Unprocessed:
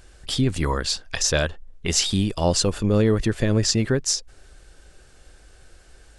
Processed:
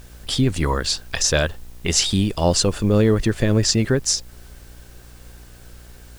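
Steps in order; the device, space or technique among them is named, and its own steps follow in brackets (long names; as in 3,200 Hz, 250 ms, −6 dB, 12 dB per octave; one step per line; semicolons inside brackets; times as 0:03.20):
video cassette with head-switching buzz (hum with harmonics 60 Hz, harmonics 35, −47 dBFS −8 dB per octave; white noise bed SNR 32 dB)
level +2.5 dB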